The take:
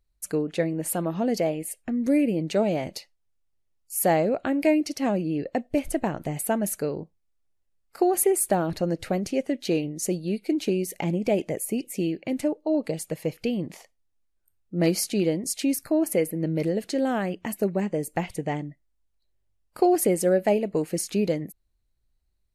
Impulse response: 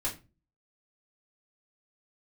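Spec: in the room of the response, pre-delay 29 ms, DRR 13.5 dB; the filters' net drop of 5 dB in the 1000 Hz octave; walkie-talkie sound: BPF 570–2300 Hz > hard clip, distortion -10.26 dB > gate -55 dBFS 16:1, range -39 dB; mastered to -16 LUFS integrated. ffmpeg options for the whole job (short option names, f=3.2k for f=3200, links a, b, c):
-filter_complex "[0:a]equalizer=f=1k:t=o:g=-6,asplit=2[a][b];[1:a]atrim=start_sample=2205,adelay=29[c];[b][c]afir=irnorm=-1:irlink=0,volume=-17.5dB[d];[a][d]amix=inputs=2:normalize=0,highpass=570,lowpass=2.3k,asoftclip=type=hard:threshold=-27.5dB,agate=range=-39dB:threshold=-55dB:ratio=16,volume=20dB"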